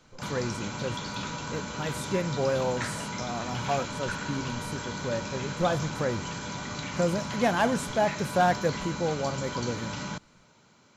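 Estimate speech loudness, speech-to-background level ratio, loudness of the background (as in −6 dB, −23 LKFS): −31.0 LKFS, 4.0 dB, −35.0 LKFS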